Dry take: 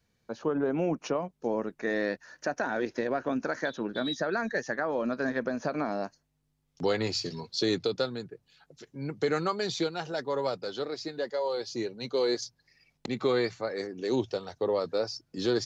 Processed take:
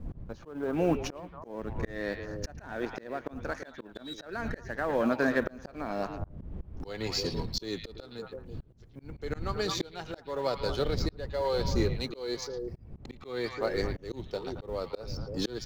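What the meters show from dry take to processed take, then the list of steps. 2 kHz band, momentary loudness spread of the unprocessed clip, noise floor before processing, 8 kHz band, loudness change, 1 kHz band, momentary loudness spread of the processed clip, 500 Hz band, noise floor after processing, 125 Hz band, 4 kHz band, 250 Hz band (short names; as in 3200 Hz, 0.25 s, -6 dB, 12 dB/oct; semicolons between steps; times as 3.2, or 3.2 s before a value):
-3.0 dB, 7 LU, -75 dBFS, n/a, -2.5 dB, -2.5 dB, 15 LU, -3.5 dB, -53 dBFS, +3.5 dB, -2.5 dB, -2.5 dB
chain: G.711 law mismatch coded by A; wind noise 110 Hz -37 dBFS; on a send: delay with a stepping band-pass 0.111 s, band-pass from 2700 Hz, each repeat -1.4 oct, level -6 dB; on the sum: auto swell 0.492 s; gain +4.5 dB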